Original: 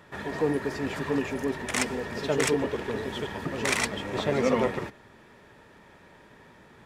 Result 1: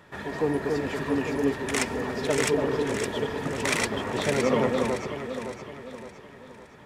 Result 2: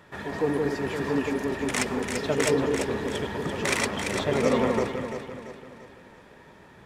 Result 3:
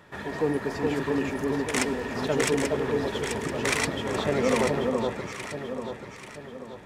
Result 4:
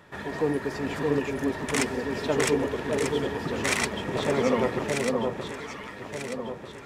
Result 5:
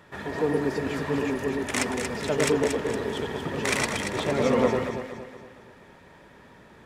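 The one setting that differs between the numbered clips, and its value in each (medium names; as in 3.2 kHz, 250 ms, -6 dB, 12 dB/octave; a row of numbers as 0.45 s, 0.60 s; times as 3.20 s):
echo whose repeats swap between lows and highs, time: 282 ms, 170 ms, 418 ms, 621 ms, 116 ms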